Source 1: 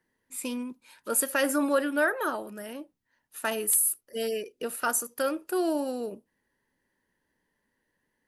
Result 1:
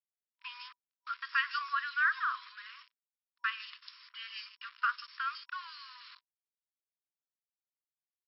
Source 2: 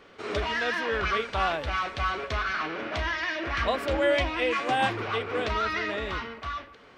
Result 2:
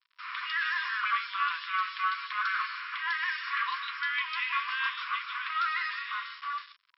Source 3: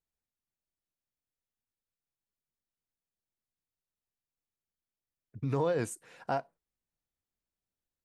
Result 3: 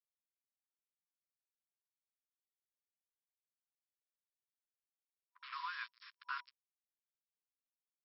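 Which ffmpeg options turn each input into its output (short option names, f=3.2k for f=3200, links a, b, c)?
-filter_complex "[0:a]acrossover=split=3500[a][b];[b]adelay=150[c];[a][c]amix=inputs=2:normalize=0,acrusher=bits=6:mix=0:aa=0.5,afftfilt=real='re*between(b*sr/4096,970,5500)':imag='im*between(b*sr/4096,970,5500)':win_size=4096:overlap=0.75"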